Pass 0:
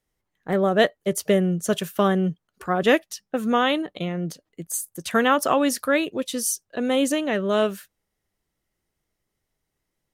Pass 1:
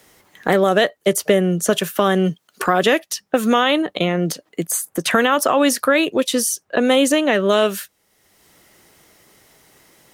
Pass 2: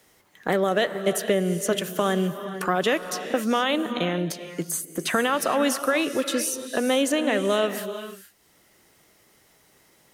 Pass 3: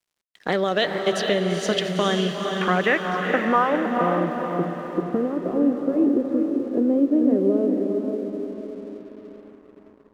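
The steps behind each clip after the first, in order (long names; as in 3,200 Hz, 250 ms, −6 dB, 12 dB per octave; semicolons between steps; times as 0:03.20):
high-pass filter 300 Hz 6 dB per octave; boost into a limiter +13 dB; multiband upward and downward compressor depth 70%; level −4.5 dB
reverb whose tail is shaped and stops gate 490 ms rising, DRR 9.5 dB; level −7 dB
low-pass filter sweep 4,600 Hz → 360 Hz, 0:01.84–0:05.07; feedback delay with all-pass diffusion 457 ms, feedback 50%, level −4.5 dB; dead-zone distortion −52 dBFS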